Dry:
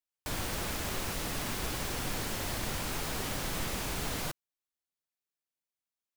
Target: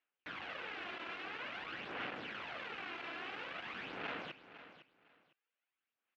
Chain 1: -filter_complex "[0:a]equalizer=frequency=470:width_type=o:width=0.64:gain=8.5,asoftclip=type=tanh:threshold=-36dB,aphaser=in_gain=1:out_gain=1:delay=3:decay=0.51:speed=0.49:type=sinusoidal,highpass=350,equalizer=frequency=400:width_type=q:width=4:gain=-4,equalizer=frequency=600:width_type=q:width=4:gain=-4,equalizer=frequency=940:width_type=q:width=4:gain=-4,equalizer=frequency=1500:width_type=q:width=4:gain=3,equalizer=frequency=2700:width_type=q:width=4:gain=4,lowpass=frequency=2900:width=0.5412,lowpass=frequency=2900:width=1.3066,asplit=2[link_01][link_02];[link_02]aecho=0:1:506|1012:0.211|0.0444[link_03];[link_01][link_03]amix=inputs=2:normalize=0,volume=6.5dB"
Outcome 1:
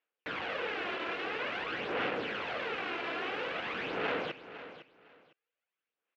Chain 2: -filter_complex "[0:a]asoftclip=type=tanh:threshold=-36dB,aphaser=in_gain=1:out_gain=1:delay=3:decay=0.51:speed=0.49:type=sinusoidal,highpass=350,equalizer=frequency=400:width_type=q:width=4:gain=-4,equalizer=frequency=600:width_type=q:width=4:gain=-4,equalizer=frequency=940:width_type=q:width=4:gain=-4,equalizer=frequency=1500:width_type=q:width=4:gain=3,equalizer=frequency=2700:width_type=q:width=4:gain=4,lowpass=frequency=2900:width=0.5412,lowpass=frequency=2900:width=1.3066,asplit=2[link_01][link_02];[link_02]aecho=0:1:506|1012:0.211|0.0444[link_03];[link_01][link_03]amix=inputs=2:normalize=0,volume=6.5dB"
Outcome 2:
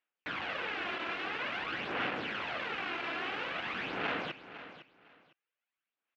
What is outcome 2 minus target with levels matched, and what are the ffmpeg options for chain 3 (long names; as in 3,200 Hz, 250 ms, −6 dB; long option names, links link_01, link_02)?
soft clipping: distortion −5 dB
-filter_complex "[0:a]asoftclip=type=tanh:threshold=-46.5dB,aphaser=in_gain=1:out_gain=1:delay=3:decay=0.51:speed=0.49:type=sinusoidal,highpass=350,equalizer=frequency=400:width_type=q:width=4:gain=-4,equalizer=frequency=600:width_type=q:width=4:gain=-4,equalizer=frequency=940:width_type=q:width=4:gain=-4,equalizer=frequency=1500:width_type=q:width=4:gain=3,equalizer=frequency=2700:width_type=q:width=4:gain=4,lowpass=frequency=2900:width=0.5412,lowpass=frequency=2900:width=1.3066,asplit=2[link_01][link_02];[link_02]aecho=0:1:506|1012:0.211|0.0444[link_03];[link_01][link_03]amix=inputs=2:normalize=0,volume=6.5dB"